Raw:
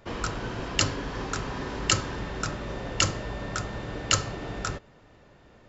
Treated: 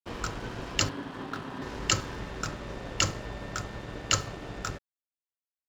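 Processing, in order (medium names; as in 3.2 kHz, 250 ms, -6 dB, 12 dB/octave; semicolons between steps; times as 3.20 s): 0.89–1.62 s: cabinet simulation 130–3800 Hz, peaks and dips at 270 Hz +5 dB, 470 Hz -5 dB, 2.3 kHz -8 dB; crossover distortion -44 dBFS; trim -2 dB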